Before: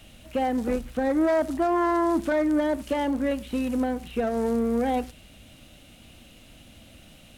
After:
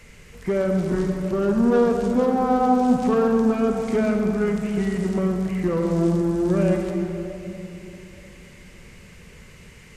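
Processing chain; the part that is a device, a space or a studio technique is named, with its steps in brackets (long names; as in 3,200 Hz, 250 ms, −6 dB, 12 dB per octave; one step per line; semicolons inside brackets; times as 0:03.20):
slowed and reverbed (speed change −26%; convolution reverb RT60 3.2 s, pre-delay 47 ms, DRR 2.5 dB)
level +2.5 dB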